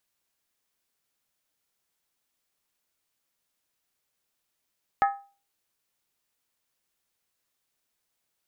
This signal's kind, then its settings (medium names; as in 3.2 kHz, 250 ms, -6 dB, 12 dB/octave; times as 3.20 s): skin hit, lowest mode 798 Hz, decay 0.36 s, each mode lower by 6 dB, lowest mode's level -16 dB